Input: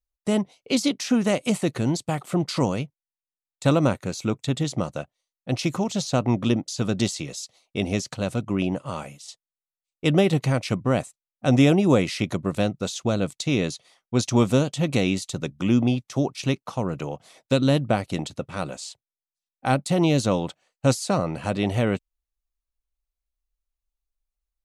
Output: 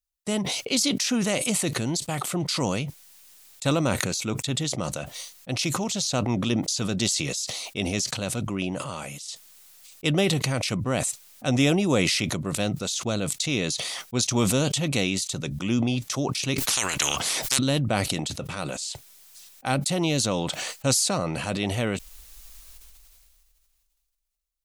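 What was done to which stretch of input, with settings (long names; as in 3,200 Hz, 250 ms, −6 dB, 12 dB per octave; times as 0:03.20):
0:16.58–0:17.59: every bin compressed towards the loudest bin 10 to 1
whole clip: high-shelf EQ 2,200 Hz +10.5 dB; level that may fall only so fast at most 23 dB per second; level −5.5 dB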